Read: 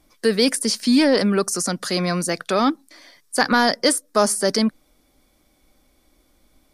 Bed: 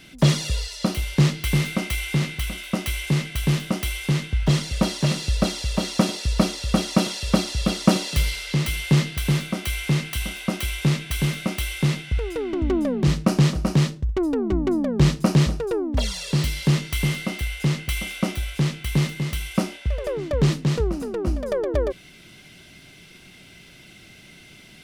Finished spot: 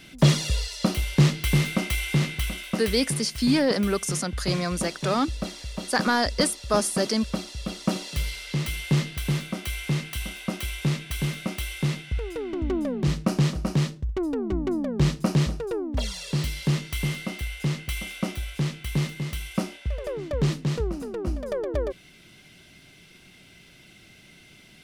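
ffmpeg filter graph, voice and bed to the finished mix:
ffmpeg -i stem1.wav -i stem2.wav -filter_complex "[0:a]adelay=2550,volume=-5.5dB[link_01];[1:a]volume=5dB,afade=type=out:start_time=2.47:duration=0.7:silence=0.334965,afade=type=in:start_time=7.66:duration=0.99:silence=0.530884[link_02];[link_01][link_02]amix=inputs=2:normalize=0" out.wav

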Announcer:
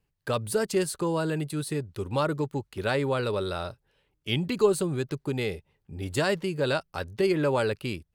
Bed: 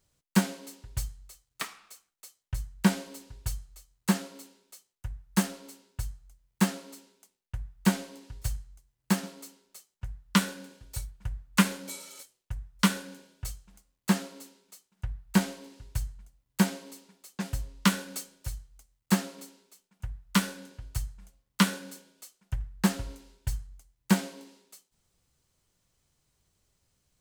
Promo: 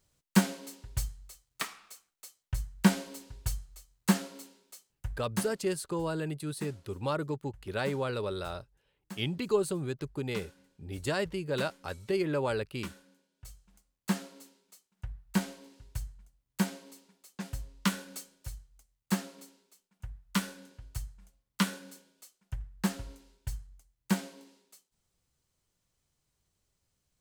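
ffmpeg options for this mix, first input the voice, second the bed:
ffmpeg -i stem1.wav -i stem2.wav -filter_complex "[0:a]adelay=4900,volume=-5.5dB[link_01];[1:a]volume=13.5dB,afade=type=out:start_time=5.08:duration=0.48:silence=0.112202,afade=type=in:start_time=13.31:duration=0.5:silence=0.211349[link_02];[link_01][link_02]amix=inputs=2:normalize=0" out.wav

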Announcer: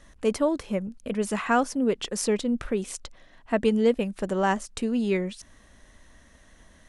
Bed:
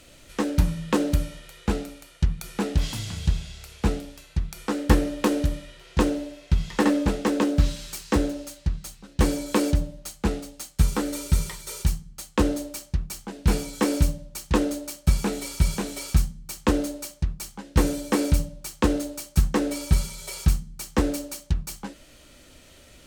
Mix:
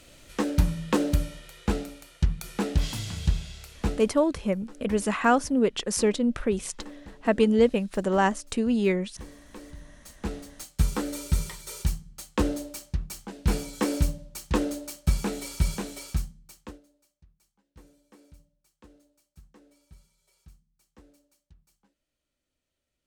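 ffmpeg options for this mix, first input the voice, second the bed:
ffmpeg -i stem1.wav -i stem2.wav -filter_complex "[0:a]adelay=3750,volume=1.5dB[link_01];[1:a]volume=18dB,afade=type=out:start_time=3.58:duration=0.88:silence=0.0841395,afade=type=in:start_time=9.77:duration=0.93:silence=0.105925,afade=type=out:start_time=15.69:duration=1.11:silence=0.0334965[link_02];[link_01][link_02]amix=inputs=2:normalize=0" out.wav

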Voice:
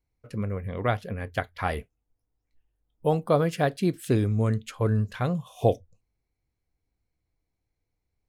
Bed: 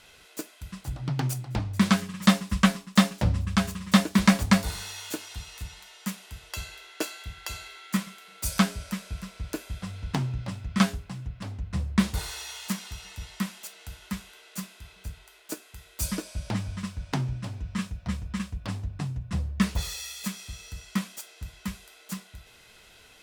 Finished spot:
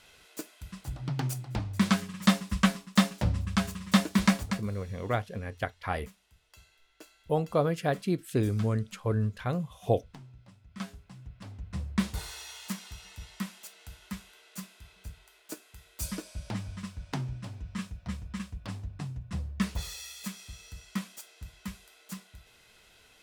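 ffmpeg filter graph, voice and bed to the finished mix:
ffmpeg -i stem1.wav -i stem2.wav -filter_complex "[0:a]adelay=4250,volume=-4dB[link_01];[1:a]volume=12dB,afade=type=out:start_time=4.24:duration=0.4:silence=0.133352,afade=type=in:start_time=10.66:duration=1.19:silence=0.16788[link_02];[link_01][link_02]amix=inputs=2:normalize=0" out.wav

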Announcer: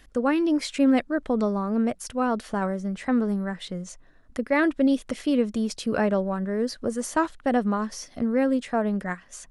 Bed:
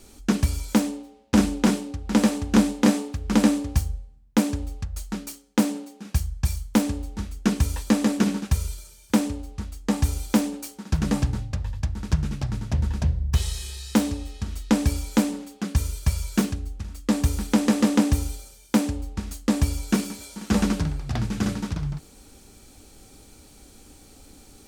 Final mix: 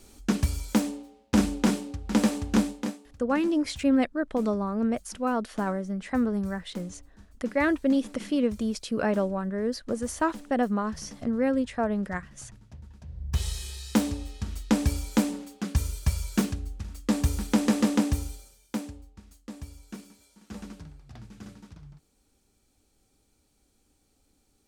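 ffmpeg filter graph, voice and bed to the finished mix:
ffmpeg -i stem1.wav -i stem2.wav -filter_complex "[0:a]adelay=3050,volume=-2.5dB[link_01];[1:a]volume=16dB,afade=type=out:start_time=2.48:duration=0.5:silence=0.112202,afade=type=in:start_time=13.07:duration=0.4:silence=0.105925,afade=type=out:start_time=17.75:duration=1.37:silence=0.149624[link_02];[link_01][link_02]amix=inputs=2:normalize=0" out.wav

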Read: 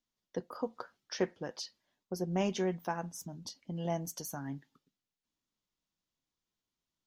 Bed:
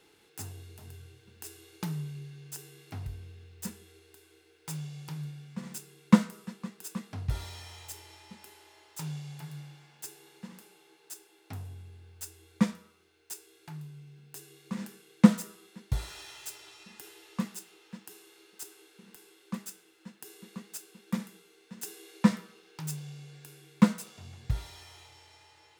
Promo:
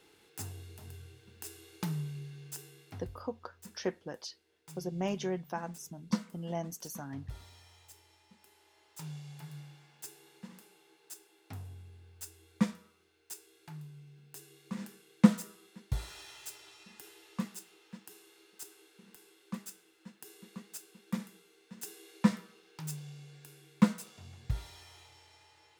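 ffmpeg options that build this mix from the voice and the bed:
ffmpeg -i stem1.wav -i stem2.wav -filter_complex "[0:a]adelay=2650,volume=-2dB[link_01];[1:a]volume=8.5dB,afade=type=out:start_time=2.43:duration=0.86:silence=0.251189,afade=type=in:start_time=8.32:duration=1.23:silence=0.354813[link_02];[link_01][link_02]amix=inputs=2:normalize=0" out.wav

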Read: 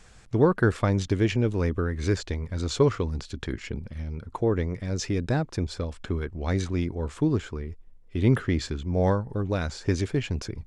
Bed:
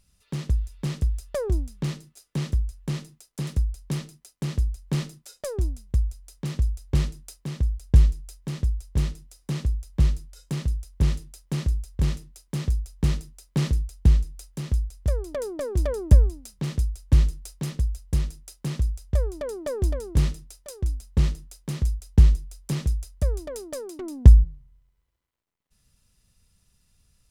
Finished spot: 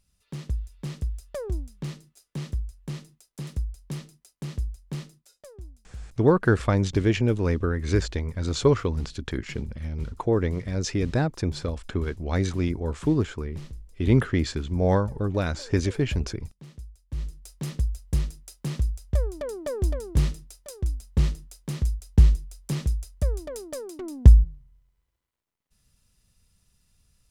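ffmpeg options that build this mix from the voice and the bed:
ffmpeg -i stem1.wav -i stem2.wav -filter_complex "[0:a]adelay=5850,volume=1.5dB[link_01];[1:a]volume=10.5dB,afade=type=out:start_time=4.67:duration=0.87:silence=0.266073,afade=type=in:start_time=17.13:duration=0.6:silence=0.158489[link_02];[link_01][link_02]amix=inputs=2:normalize=0" out.wav

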